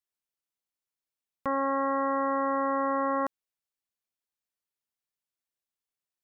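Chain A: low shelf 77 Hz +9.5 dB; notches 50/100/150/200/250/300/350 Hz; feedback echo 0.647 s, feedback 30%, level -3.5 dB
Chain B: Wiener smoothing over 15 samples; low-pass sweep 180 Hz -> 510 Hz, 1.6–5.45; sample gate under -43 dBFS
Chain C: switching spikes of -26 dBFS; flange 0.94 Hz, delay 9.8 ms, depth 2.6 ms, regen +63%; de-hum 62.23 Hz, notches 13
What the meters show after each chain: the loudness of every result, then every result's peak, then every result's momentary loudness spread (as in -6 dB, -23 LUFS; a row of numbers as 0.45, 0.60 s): -29.5, -32.0, -32.5 LUFS; -18.5, -23.0, -20.5 dBFS; 15, 12, 2 LU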